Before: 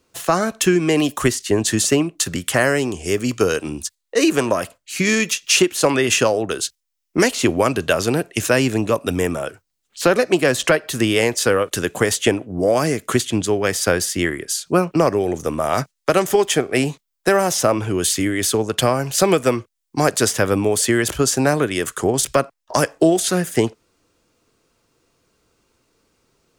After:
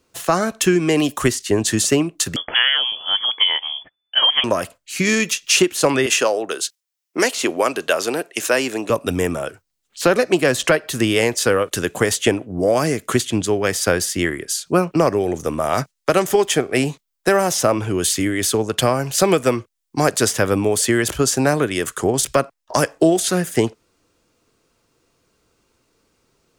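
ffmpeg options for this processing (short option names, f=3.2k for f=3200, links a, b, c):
-filter_complex "[0:a]asettb=1/sr,asplit=3[a][b][c];[a]atrim=end=2.364[d];[b]atrim=start=2.36:end=4.44,asetpts=PTS-STARTPTS,afade=t=in:d=0.004:c=qsin,afade=t=out:st=2.076:d=0.004:c=qsin,lowpass=f=3k:t=q:w=0.5098,lowpass=f=3k:t=q:w=0.6013,lowpass=f=3k:t=q:w=0.9,lowpass=f=3k:t=q:w=2.563,afreqshift=-3500[e];[c]atrim=start=4.436[f];[d][e]acrossfade=d=0.004:c1=hsin:c2=qsin[g];[g][f]acrossfade=d=0.004:c1=qsin:c2=hsin,asettb=1/sr,asplit=3[h][i][j];[h]atrim=end=6.064[k];[i]atrim=start=6.06:end=8.9,asetpts=PTS-STARTPTS,afade=t=in:d=0.004:c=qsin,afade=t=out:st=2.836:d=0.004:c=qsin,highpass=360[l];[j]atrim=start=8.896[m];[k][l]acrossfade=d=0.004:c1=hsin:c2=qsin[n];[n][m]acrossfade=d=0.004:c1=qsin:c2=hsin"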